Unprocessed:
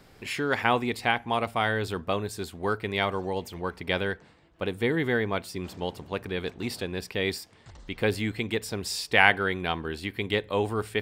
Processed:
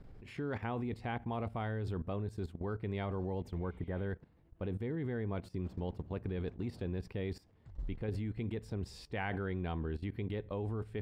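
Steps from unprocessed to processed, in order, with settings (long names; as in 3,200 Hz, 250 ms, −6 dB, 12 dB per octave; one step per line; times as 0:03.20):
spectral tilt −4 dB per octave
output level in coarse steps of 15 dB
healed spectral selection 0:03.63–0:04.01, 2,000–7,200 Hz both
level −6.5 dB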